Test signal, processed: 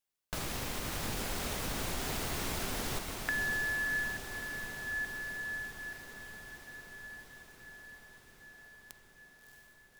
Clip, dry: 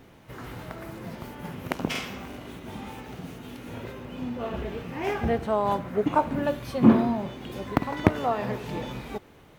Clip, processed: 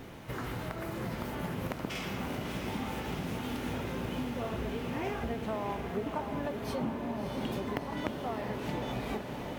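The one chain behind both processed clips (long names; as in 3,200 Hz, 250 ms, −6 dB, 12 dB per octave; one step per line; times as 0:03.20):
downward compressor 10 to 1, threshold −39 dBFS
feedback delay with all-pass diffusion 655 ms, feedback 73%, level −5.5 dB
level +5.5 dB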